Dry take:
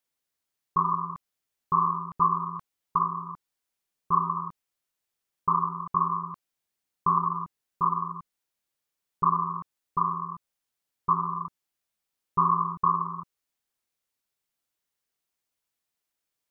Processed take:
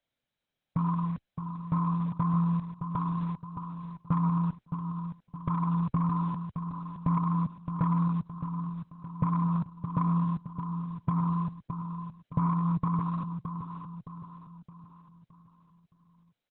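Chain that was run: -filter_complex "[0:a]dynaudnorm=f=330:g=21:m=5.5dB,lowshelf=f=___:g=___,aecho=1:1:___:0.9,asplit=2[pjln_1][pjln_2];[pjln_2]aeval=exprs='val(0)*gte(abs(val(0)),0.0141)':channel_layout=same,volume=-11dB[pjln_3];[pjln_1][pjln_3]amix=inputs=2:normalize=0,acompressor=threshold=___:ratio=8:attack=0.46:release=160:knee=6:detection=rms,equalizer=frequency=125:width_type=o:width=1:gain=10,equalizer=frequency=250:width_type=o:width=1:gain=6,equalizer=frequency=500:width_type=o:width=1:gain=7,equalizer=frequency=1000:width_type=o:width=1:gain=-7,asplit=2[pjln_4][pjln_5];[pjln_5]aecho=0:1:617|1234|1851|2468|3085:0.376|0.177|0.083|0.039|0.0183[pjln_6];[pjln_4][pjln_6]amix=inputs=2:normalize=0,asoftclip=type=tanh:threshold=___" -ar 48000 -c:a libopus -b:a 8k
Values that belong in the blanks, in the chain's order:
130, -5.5, 1.3, -21dB, -15dB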